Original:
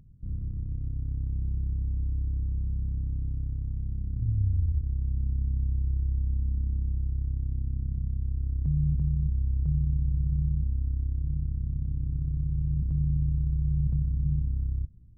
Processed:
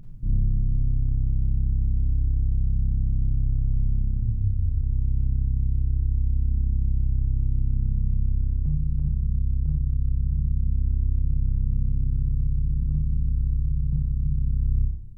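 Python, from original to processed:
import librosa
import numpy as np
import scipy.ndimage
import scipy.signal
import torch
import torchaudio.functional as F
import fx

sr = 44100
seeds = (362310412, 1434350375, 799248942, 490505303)

y = fx.peak_eq(x, sr, hz=61.0, db=-12.0, octaves=1.1)
y = fx.rev_schroeder(y, sr, rt60_s=0.68, comb_ms=31, drr_db=-1.0)
y = fx.rider(y, sr, range_db=10, speed_s=0.5)
y = fx.low_shelf(y, sr, hz=82.0, db=10.5)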